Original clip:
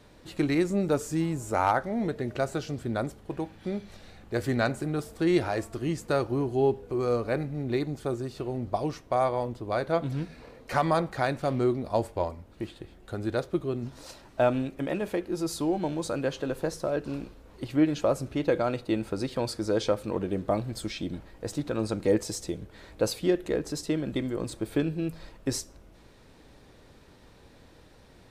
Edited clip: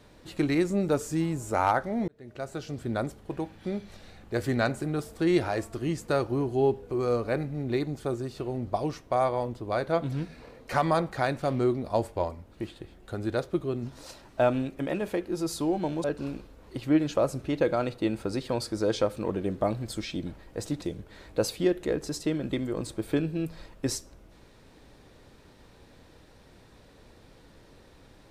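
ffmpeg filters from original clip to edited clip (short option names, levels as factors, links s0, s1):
-filter_complex "[0:a]asplit=4[s0][s1][s2][s3];[s0]atrim=end=2.08,asetpts=PTS-STARTPTS,afade=t=out:st=2.076:d=0.004:c=hsin[s4];[s1]atrim=start=2.08:end=16.042,asetpts=PTS-STARTPTS,afade=t=in:d=0.83[s5];[s2]atrim=start=16.908:end=21.692[s6];[s3]atrim=start=22.448[s7];[s4][s5]concat=n=2:v=0:a=1[s8];[s8][s6]acrossfade=d=0.004:c1=hsin:c2=hsin[s9];[s9][s7]acrossfade=d=0.004:c1=hsin:c2=hsin"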